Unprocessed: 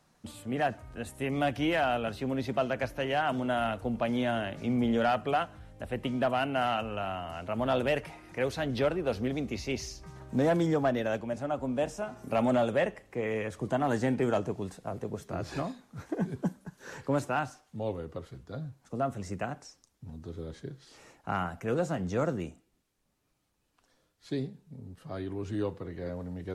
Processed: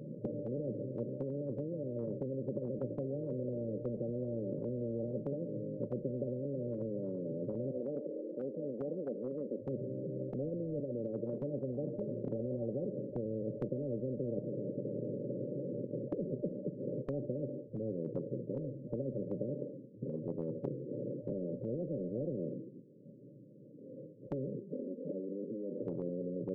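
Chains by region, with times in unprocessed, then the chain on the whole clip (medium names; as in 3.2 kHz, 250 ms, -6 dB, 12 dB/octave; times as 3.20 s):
1.14–2.77 s: low-pass 1.4 kHz + compression 8:1, threshold -33 dBFS
7.71–9.65 s: high-pass 410 Hz 24 dB/octave + comb 4 ms, depth 31%
10.80–11.42 s: high-pass 310 Hz + compression, threshold -30 dBFS
14.39–16.12 s: waveshaping leveller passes 5 + compression 12:1, threshold -33 dBFS + integer overflow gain 39.5 dB
24.59–25.87 s: Chebyshev high-pass 240 Hz, order 4 + touch-sensitive flanger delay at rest 5.7 ms, full sweep at -33 dBFS + compression, threshold -47 dBFS
whole clip: FFT band-pass 110–600 Hz; dynamic bell 190 Hz, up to +3 dB, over -44 dBFS, Q 1.6; spectrum-flattening compressor 10:1; trim -5.5 dB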